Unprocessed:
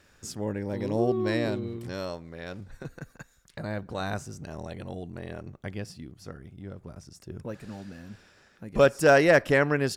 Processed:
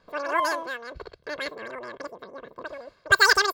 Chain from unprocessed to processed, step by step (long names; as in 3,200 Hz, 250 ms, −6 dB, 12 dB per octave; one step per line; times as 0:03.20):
comb filter 5.2 ms, depth 57%
low-pass that shuts in the quiet parts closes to 880 Hz, open at −15.5 dBFS
change of speed 2.82×